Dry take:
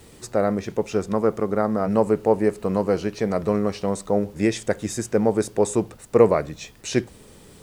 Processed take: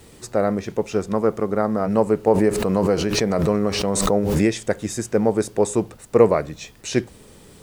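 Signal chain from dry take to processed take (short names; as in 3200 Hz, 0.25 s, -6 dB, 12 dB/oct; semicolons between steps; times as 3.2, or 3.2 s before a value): 2.27–4.64 backwards sustainer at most 28 dB/s; gain +1 dB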